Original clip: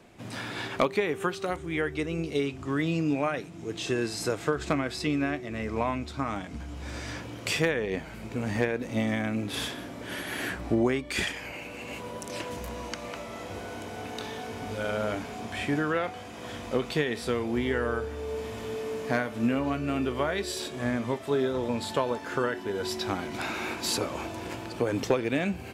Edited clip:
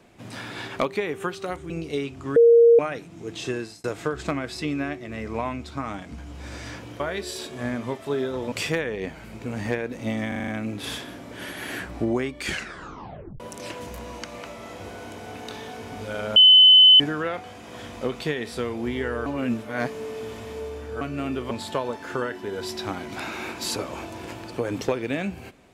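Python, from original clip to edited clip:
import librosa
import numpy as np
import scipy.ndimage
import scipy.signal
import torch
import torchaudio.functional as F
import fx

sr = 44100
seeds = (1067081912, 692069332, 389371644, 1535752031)

y = fx.edit(x, sr, fx.cut(start_s=1.7, length_s=0.42),
    fx.bleep(start_s=2.78, length_s=0.43, hz=467.0, db=-10.0),
    fx.fade_out_span(start_s=3.94, length_s=0.32),
    fx.stutter(start_s=9.18, slice_s=0.04, count=6),
    fx.tape_stop(start_s=11.15, length_s=0.95),
    fx.bleep(start_s=15.06, length_s=0.64, hz=3030.0, db=-8.5),
    fx.reverse_span(start_s=17.96, length_s=1.75),
    fx.move(start_s=20.21, length_s=1.52, to_s=7.42), tone=tone)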